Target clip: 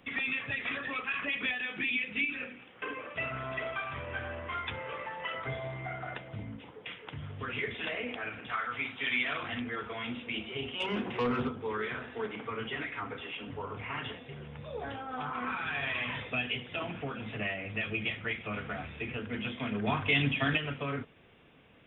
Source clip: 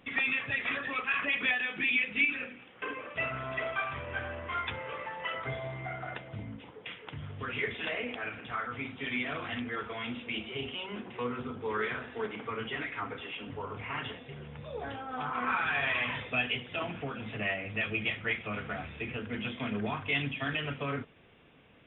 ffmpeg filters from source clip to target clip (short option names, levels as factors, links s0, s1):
-filter_complex "[0:a]acrossover=split=400|3000[s0][s1][s2];[s1]acompressor=threshold=0.02:ratio=6[s3];[s0][s3][s2]amix=inputs=3:normalize=0,asettb=1/sr,asplit=3[s4][s5][s6];[s4]atrim=end=8.494[s7];[s5]atrim=start=8.49:end=9.43,asetpts=PTS-STARTPTS,afade=t=in:d=0.004:c=qsin,afade=t=out:st=0.936:d=0.004:c=qsin,tiltshelf=f=650:g=-6.5[s8];[s6]atrim=start=9.426[s9];[s7][s8]acrossfade=d=0.004:c1=hsin:c2=qsin[s10];[s10][s9]acrossfade=d=0.004:c1=qsin:c2=hsin,asettb=1/sr,asplit=3[s11][s12][s13];[s11]atrim=end=10.804[s14];[s12]atrim=start=10.8:end=11.49,asetpts=PTS-STARTPTS,afade=t=in:d=0.004:c=qsin,afade=t=out:st=0.686:d=0.004:c=qsin,aeval=exprs='0.0596*sin(PI/2*1.58*val(0)/0.0596)':c=same[s15];[s13]atrim=start=11.486[s16];[s14][s15]acrossfade=d=0.004:c1=hsin:c2=qsin[s17];[s17][s16]acrossfade=d=0.004:c1=qsin:c2=hsin,asettb=1/sr,asplit=3[s18][s19][s20];[s18]atrim=end=19.874[s21];[s19]atrim=start=19.87:end=20.58,asetpts=PTS-STARTPTS,afade=t=in:d=0.004:c=qsin,afade=t=out:st=0.706:d=0.004:c=qsin,acontrast=49[s22];[s20]atrim=start=20.576[s23];[s21][s22]acrossfade=d=0.004:c1=hsin:c2=qsin[s24];[s24][s23]acrossfade=d=0.004:c1=qsin:c2=hsin"